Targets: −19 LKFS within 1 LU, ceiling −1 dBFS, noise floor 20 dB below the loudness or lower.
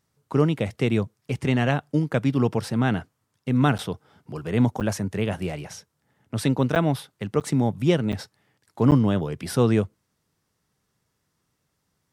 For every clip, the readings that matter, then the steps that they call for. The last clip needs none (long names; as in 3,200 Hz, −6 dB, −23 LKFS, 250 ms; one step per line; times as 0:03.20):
number of dropouts 6; longest dropout 8.9 ms; integrated loudness −24.0 LKFS; sample peak −6.0 dBFS; target loudness −19.0 LKFS
→ repair the gap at 0:03.78/0:04.80/0:06.75/0:07.40/0:08.12/0:08.91, 8.9 ms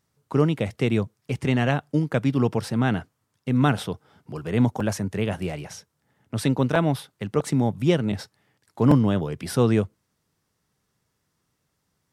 number of dropouts 0; integrated loudness −24.0 LKFS; sample peak −4.5 dBFS; target loudness −19.0 LKFS
→ level +5 dB
brickwall limiter −1 dBFS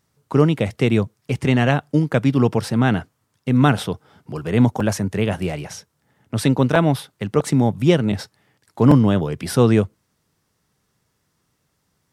integrated loudness −19.0 LKFS; sample peak −1.0 dBFS; background noise floor −70 dBFS